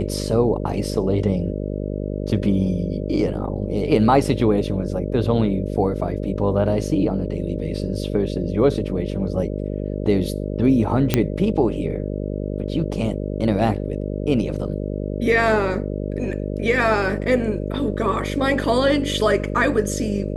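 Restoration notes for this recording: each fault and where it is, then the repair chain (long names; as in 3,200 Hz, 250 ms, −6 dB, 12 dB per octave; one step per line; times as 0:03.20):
mains buzz 50 Hz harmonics 12 −26 dBFS
0:11.14: click −2 dBFS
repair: click removal
hum removal 50 Hz, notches 12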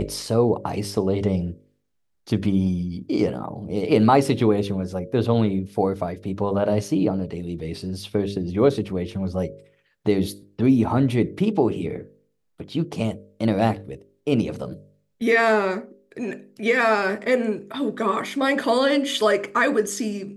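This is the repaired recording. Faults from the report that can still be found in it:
none of them is left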